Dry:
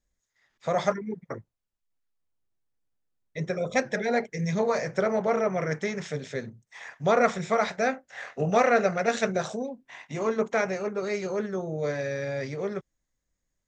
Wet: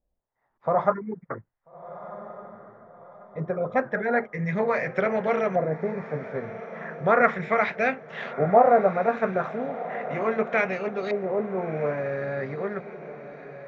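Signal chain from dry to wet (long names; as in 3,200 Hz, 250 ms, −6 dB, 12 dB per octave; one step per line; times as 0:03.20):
auto-filter low-pass saw up 0.36 Hz 690–3,400 Hz
feedback delay with all-pass diffusion 1,341 ms, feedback 44%, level −13.5 dB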